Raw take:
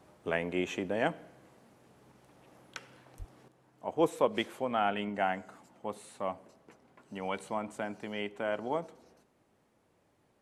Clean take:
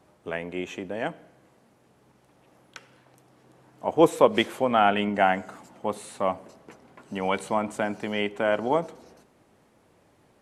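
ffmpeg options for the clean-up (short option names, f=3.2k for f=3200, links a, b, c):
-filter_complex "[0:a]asplit=3[a][b][c];[a]afade=t=out:st=3.18:d=0.02[d];[b]highpass=f=140:w=0.5412,highpass=f=140:w=1.3066,afade=t=in:st=3.18:d=0.02,afade=t=out:st=3.3:d=0.02[e];[c]afade=t=in:st=3.3:d=0.02[f];[d][e][f]amix=inputs=3:normalize=0,asetnsamples=n=441:p=0,asendcmd='3.48 volume volume 9.5dB',volume=0dB"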